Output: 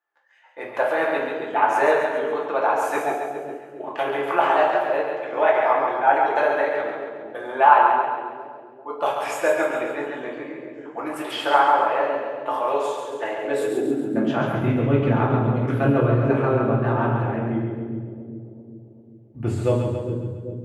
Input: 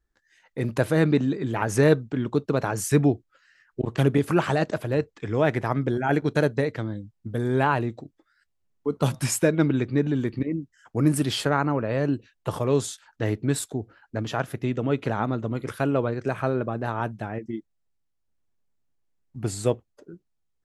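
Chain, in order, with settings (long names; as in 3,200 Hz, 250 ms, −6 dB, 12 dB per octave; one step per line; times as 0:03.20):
flat-topped bell 6,500 Hz −11 dB
echo with a time of its own for lows and highs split 470 Hz, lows 394 ms, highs 137 ms, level −5 dB
convolution reverb RT60 1.1 s, pre-delay 3 ms, DRR −3 dB
high-pass filter sweep 760 Hz → 75 Hz, 0:13.35–0:15.04
high-shelf EQ 9,600 Hz −7 dB
level −1.5 dB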